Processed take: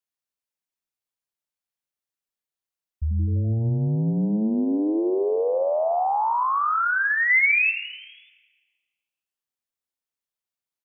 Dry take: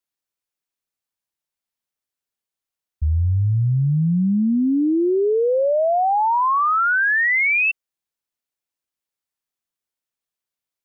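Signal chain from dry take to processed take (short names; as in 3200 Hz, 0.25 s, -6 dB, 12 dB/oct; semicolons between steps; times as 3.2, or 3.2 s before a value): 7.3–7.7 fifteen-band EQ 160 Hz +8 dB, 630 Hz +12 dB, 1600 Hz +10 dB; frequency-shifting echo 83 ms, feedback 59%, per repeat +120 Hz, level -12 dB; Schroeder reverb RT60 1.4 s, combs from 33 ms, DRR 14.5 dB; gain -5 dB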